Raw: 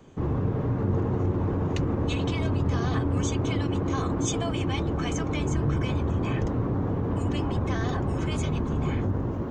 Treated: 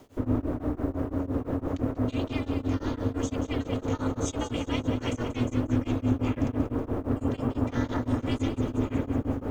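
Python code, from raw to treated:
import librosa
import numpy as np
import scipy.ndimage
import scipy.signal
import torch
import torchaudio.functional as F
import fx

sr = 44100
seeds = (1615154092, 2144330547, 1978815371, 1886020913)

y = fx.echo_feedback(x, sr, ms=186, feedback_pct=58, wet_db=-9)
y = fx.rider(y, sr, range_db=10, speed_s=0.5)
y = fx.quant_dither(y, sr, seeds[0], bits=10, dither='none')
y = fx.peak_eq(y, sr, hz=66.0, db=12.0, octaves=0.91)
y = y * np.sin(2.0 * np.pi * 180.0 * np.arange(len(y)) / sr)
y = fx.low_shelf(y, sr, hz=230.0, db=-5.5)
y = y * np.abs(np.cos(np.pi * 5.9 * np.arange(len(y)) / sr))
y = y * 10.0 ** (1.5 / 20.0)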